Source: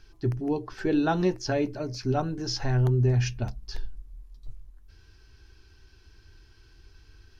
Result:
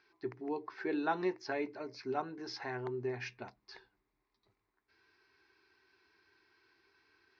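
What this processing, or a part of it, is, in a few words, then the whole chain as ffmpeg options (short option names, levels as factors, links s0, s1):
phone earpiece: -af "highpass=380,equalizer=f=390:t=q:w=4:g=3,equalizer=f=560:t=q:w=4:g=-6,equalizer=f=1000:t=q:w=4:g=5,equalizer=f=2100:t=q:w=4:g=8,equalizer=f=3100:t=q:w=4:g=-9,lowpass=f=4400:w=0.5412,lowpass=f=4400:w=1.3066,volume=0.473"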